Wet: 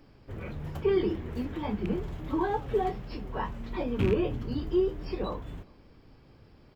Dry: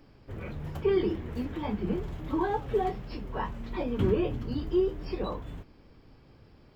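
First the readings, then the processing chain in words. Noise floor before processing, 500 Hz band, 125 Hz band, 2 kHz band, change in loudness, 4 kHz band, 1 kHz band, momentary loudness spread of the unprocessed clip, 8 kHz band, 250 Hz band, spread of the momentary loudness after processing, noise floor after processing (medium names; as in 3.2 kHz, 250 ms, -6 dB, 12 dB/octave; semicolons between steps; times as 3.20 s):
-57 dBFS, 0.0 dB, 0.0 dB, +0.5 dB, 0.0 dB, +0.5 dB, 0.0 dB, 13 LU, no reading, 0.0 dB, 13 LU, -57 dBFS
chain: rattle on loud lows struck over -25 dBFS, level -26 dBFS; echo from a far wall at 69 m, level -29 dB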